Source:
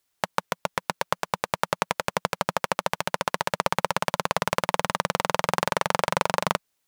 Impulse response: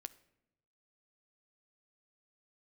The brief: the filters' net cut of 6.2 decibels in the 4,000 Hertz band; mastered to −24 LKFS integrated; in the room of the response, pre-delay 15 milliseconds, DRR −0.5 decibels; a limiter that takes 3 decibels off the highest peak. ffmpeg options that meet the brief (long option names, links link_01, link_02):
-filter_complex "[0:a]equalizer=frequency=4000:width_type=o:gain=-8.5,alimiter=limit=-7dB:level=0:latency=1,asplit=2[link_01][link_02];[1:a]atrim=start_sample=2205,adelay=15[link_03];[link_02][link_03]afir=irnorm=-1:irlink=0,volume=5.5dB[link_04];[link_01][link_04]amix=inputs=2:normalize=0,volume=2dB"